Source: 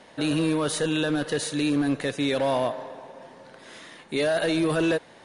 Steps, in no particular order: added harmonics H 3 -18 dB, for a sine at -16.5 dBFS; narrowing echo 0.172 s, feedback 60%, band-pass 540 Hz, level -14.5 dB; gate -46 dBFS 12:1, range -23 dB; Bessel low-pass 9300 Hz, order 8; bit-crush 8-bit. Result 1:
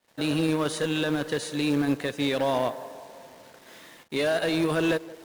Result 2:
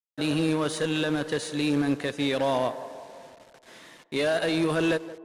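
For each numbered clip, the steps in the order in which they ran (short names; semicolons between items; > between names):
Bessel low-pass > bit-crush > narrowing echo > gate > added harmonics; gate > bit-crush > Bessel low-pass > added harmonics > narrowing echo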